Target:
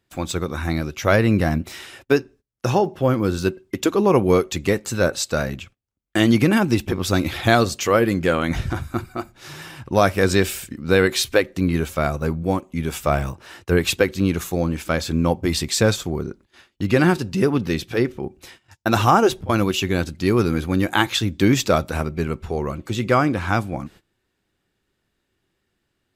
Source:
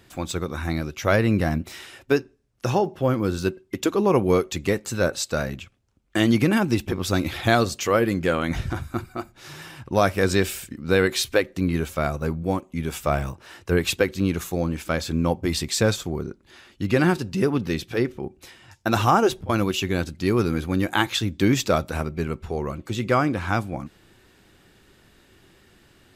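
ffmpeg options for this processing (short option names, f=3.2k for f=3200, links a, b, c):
-af "agate=range=-21dB:threshold=-47dB:ratio=16:detection=peak,volume=3dB"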